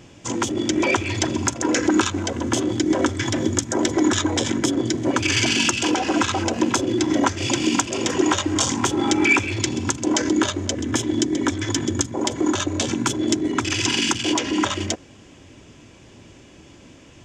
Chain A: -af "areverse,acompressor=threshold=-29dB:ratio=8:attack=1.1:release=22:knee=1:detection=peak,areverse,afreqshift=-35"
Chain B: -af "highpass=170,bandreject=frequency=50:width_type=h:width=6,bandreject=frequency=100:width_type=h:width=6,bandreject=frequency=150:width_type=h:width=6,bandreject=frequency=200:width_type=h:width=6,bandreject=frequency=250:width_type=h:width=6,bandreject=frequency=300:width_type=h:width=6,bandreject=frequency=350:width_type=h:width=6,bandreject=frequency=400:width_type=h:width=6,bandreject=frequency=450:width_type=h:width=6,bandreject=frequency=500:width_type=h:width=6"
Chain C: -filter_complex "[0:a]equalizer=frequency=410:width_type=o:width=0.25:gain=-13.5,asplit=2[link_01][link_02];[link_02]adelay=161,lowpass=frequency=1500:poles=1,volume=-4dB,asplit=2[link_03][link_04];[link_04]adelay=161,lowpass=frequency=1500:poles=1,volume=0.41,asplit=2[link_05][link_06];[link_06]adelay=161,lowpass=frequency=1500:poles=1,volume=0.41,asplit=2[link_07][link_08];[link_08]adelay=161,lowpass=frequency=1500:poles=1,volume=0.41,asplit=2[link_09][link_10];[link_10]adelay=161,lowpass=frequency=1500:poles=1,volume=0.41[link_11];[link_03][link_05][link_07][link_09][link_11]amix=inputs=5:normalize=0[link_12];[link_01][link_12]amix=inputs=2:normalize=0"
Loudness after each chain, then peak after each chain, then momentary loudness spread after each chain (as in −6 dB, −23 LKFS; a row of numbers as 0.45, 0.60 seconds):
−31.5, −22.0, −21.5 LKFS; −18.5, −3.0, −3.5 dBFS; 17, 5, 5 LU